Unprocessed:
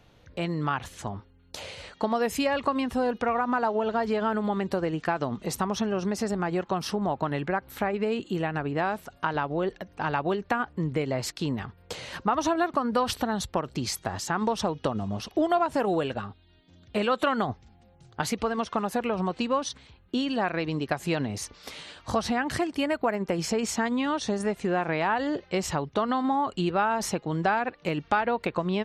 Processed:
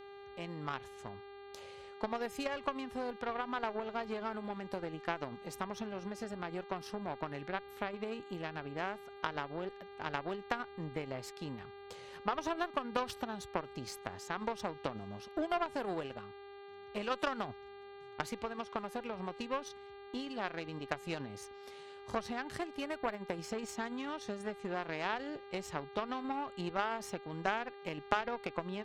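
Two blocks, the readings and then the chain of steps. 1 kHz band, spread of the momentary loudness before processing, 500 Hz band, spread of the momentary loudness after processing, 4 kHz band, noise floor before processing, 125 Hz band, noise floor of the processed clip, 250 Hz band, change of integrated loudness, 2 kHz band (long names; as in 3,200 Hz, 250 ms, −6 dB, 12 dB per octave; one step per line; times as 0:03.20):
−11.0 dB, 8 LU, −11.5 dB, 12 LU, −10.5 dB, −58 dBFS, −14.5 dB, −52 dBFS, −13.5 dB, −11.5 dB, −9.5 dB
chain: harmonic generator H 3 −12 dB, 6 −37 dB, 7 −43 dB, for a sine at −10 dBFS
hum with harmonics 400 Hz, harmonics 11, −49 dBFS −7 dB per octave
level −2.5 dB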